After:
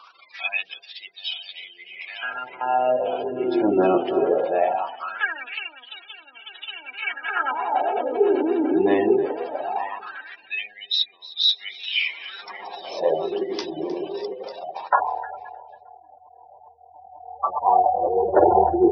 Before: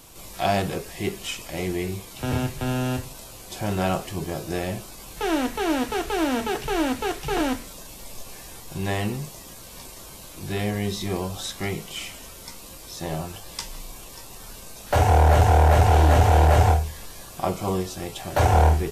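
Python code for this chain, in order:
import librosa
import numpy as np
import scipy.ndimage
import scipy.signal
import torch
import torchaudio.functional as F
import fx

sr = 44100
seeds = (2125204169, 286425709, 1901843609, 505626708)

y = fx.reverse_delay_fb(x, sr, ms=449, feedback_pct=83, wet_db=-9)
y = scipy.signal.sosfilt(scipy.signal.butter(6, 5400.0, 'lowpass', fs=sr, output='sos'), y)
y = fx.spec_gate(y, sr, threshold_db=-20, keep='strong')
y = fx.echo_feedback(y, sr, ms=309, feedback_pct=41, wet_db=-18)
y = fx.filter_lfo_highpass(y, sr, shape='sine', hz=0.2, low_hz=330.0, high_hz=4000.0, q=6.1)
y = y * librosa.db_to_amplitude(2.0)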